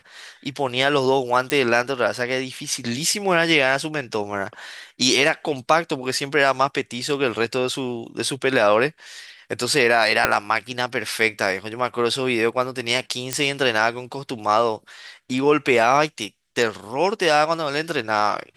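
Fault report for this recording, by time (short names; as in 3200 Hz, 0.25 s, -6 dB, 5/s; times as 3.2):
1.5 pop -6 dBFS
10.25 pop -1 dBFS
13.33 pop -5 dBFS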